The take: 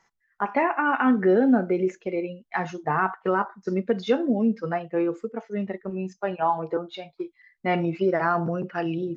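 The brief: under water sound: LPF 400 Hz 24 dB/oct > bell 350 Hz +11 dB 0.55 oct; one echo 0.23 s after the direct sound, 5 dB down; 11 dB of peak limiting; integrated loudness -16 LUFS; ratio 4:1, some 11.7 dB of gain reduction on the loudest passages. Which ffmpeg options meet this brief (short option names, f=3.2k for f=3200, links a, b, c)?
-af "acompressor=threshold=-30dB:ratio=4,alimiter=level_in=3dB:limit=-24dB:level=0:latency=1,volume=-3dB,lowpass=f=400:w=0.5412,lowpass=f=400:w=1.3066,equalizer=f=350:t=o:w=0.55:g=11,aecho=1:1:230:0.562,volume=15.5dB"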